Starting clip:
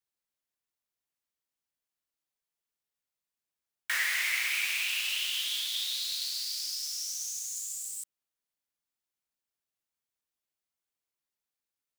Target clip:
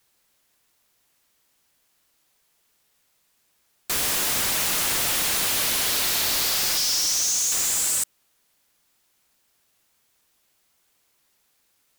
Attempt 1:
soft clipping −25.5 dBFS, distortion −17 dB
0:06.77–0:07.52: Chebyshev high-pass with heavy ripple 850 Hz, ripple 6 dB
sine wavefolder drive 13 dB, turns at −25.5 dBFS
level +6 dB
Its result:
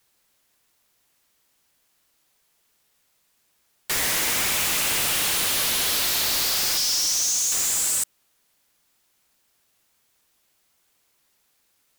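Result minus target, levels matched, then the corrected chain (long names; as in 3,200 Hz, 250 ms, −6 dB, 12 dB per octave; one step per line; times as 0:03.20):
soft clipping: distortion +19 dB
soft clipping −14 dBFS, distortion −36 dB
0:06.77–0:07.52: Chebyshev high-pass with heavy ripple 850 Hz, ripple 6 dB
sine wavefolder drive 13 dB, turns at −25.5 dBFS
level +6 dB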